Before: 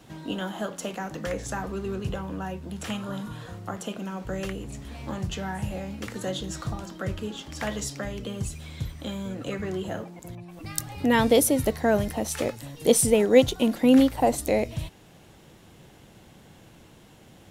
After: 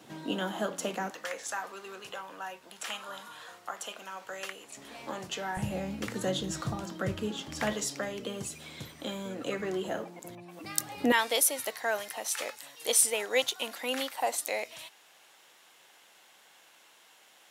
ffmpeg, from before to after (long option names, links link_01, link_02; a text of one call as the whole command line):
ffmpeg -i in.wav -af "asetnsamples=nb_out_samples=441:pad=0,asendcmd='1.11 highpass f 840;4.77 highpass f 400;5.57 highpass f 120;7.73 highpass f 270;11.12 highpass f 1000',highpass=210" out.wav